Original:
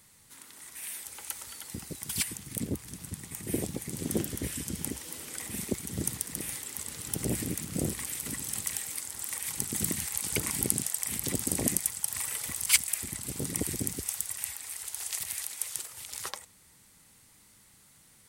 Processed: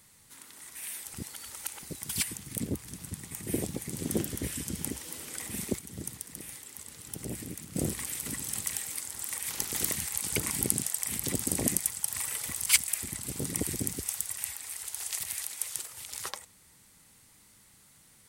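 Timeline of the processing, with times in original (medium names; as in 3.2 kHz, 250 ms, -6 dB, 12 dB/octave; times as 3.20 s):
1.14–1.83 s: reverse
5.79–7.76 s: gain -7 dB
9.49–9.95 s: spectral peaks clipped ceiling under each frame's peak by 15 dB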